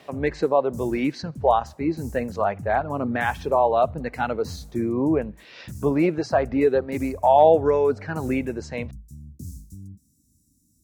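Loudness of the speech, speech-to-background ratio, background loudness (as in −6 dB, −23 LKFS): −23.0 LKFS, 17.5 dB, −40.5 LKFS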